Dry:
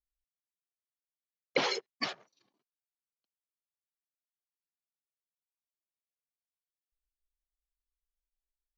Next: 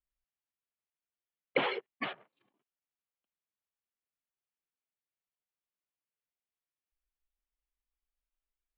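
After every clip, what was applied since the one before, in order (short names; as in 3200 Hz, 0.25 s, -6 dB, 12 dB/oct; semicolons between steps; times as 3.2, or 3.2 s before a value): steep low-pass 3300 Hz 48 dB/oct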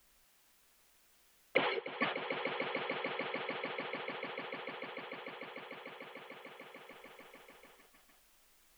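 on a send: swelling echo 0.148 s, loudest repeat 5, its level -15.5 dB; on the sum: three-band squash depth 70%; gain +6 dB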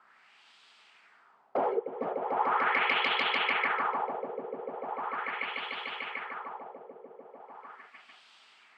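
hard clip -31.5 dBFS, distortion -10 dB; LFO low-pass sine 0.39 Hz 480–3400 Hz; speaker cabinet 280–9900 Hz, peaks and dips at 320 Hz -8 dB, 530 Hz -8 dB, 860 Hz +4 dB, 1300 Hz +5 dB, 4700 Hz +6 dB, 8000 Hz +9 dB; gain +8.5 dB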